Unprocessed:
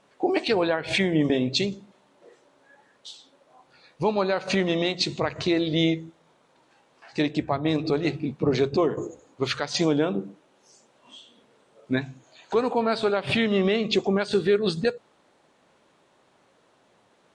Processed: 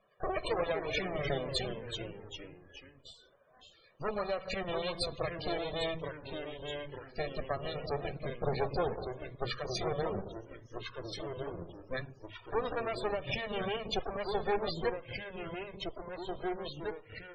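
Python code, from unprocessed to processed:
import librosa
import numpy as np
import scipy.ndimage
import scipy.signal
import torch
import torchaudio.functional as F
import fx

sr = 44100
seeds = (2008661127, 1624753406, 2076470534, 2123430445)

y = fx.lower_of_two(x, sr, delay_ms=1.7)
y = fx.echo_pitch(y, sr, ms=186, semitones=-2, count=3, db_per_echo=-6.0)
y = fx.spec_topn(y, sr, count=64)
y = F.gain(torch.from_numpy(y), -7.0).numpy()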